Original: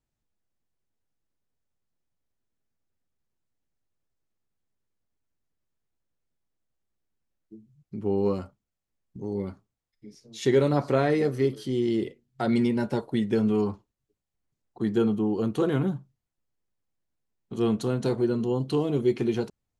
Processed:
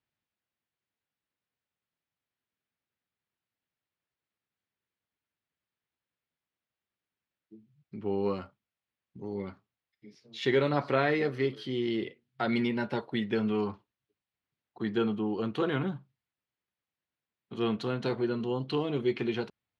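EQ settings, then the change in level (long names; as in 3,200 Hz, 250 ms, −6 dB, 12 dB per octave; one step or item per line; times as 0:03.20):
high-pass filter 89 Hz
high-frequency loss of the air 370 metres
tilt shelving filter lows −9.5 dB, about 1,300 Hz
+3.5 dB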